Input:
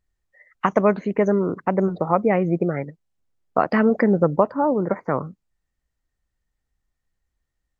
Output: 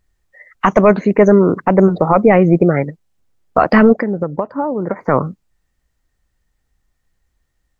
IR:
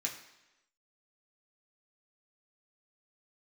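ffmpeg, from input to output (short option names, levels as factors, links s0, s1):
-filter_complex "[0:a]asettb=1/sr,asplit=3[s0][s1][s2];[s0]atrim=end=1.014[s3];[s1]atrim=start=1.01:end=1.49,asetpts=PTS-STARTPTS,afade=t=in:d=0.004:c=qsin,afade=t=out:st=0.476:d=0.004:c=qsin,bandreject=f=3100:w=5.1[s4];[s2]atrim=start=1.486[s5];[s3][s4]acrossfade=d=0.004:c1=hsin:c2=qsin[s6];[s6][s5]acrossfade=d=0.004:c1=qsin:c2=hsin,asplit=3[s7][s8][s9];[s7]afade=t=out:st=3.92:d=0.02[s10];[s8]acompressor=threshold=0.0501:ratio=8,afade=t=in:st=3.92:d=0.02,afade=t=out:st=4.99:d=0.02[s11];[s9]afade=t=in:st=4.99:d=0.02[s12];[s10][s11][s12]amix=inputs=3:normalize=0,apsyclip=3.98,volume=0.841"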